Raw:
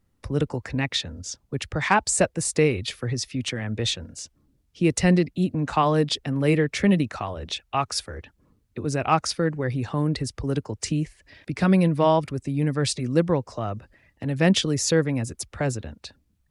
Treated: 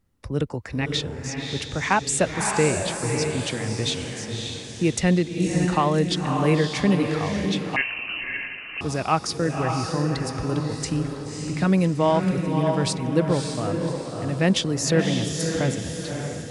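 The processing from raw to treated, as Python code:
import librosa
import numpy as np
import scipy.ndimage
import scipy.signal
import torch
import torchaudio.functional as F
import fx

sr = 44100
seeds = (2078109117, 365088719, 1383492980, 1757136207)

y = fx.echo_diffused(x, sr, ms=578, feedback_pct=44, wet_db=-4)
y = fx.freq_invert(y, sr, carrier_hz=2900, at=(7.76, 8.81))
y = F.gain(torch.from_numpy(y), -1.0).numpy()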